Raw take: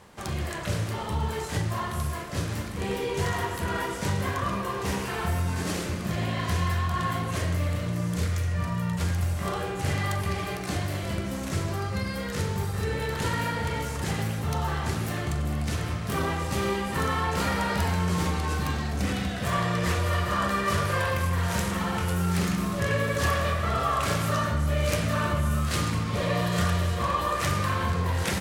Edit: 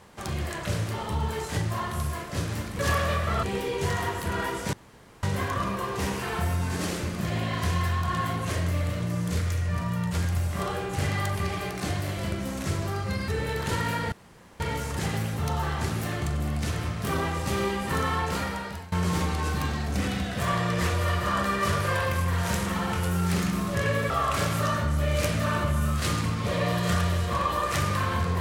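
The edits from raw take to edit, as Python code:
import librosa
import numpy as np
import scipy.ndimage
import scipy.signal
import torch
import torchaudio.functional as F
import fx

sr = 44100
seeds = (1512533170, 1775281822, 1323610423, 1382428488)

y = fx.edit(x, sr, fx.insert_room_tone(at_s=4.09, length_s=0.5),
    fx.cut(start_s=12.14, length_s=0.67),
    fx.insert_room_tone(at_s=13.65, length_s=0.48),
    fx.fade_out_to(start_s=17.22, length_s=0.75, floor_db=-22.5),
    fx.move(start_s=23.15, length_s=0.64, to_s=2.79), tone=tone)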